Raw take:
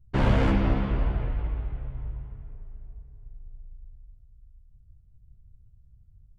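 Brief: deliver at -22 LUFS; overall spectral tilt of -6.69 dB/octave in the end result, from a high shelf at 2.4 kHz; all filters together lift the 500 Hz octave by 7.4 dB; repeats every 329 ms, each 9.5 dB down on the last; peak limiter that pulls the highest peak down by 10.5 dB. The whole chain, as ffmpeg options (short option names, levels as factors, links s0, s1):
-af "equalizer=f=500:t=o:g=8.5,highshelf=f=2400:g=5.5,alimiter=limit=0.119:level=0:latency=1,aecho=1:1:329|658|987|1316:0.335|0.111|0.0365|0.012,volume=2.66"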